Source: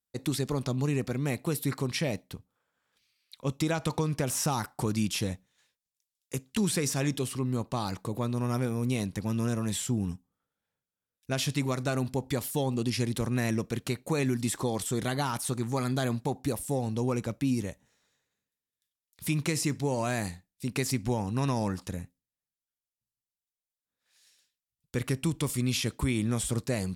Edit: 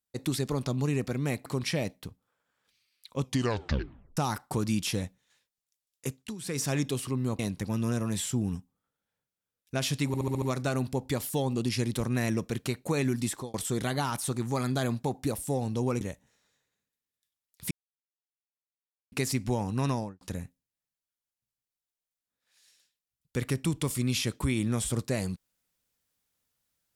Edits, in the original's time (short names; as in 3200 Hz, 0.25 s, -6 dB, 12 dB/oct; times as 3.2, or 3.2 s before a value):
1.46–1.74 cut
3.5 tape stop 0.95 s
6.37–6.93 dip -16 dB, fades 0.27 s
7.67–8.95 cut
11.63 stutter 0.07 s, 6 plays
14.37–14.75 fade out equal-power
17.22–17.6 cut
19.3–20.71 mute
21.47–21.8 studio fade out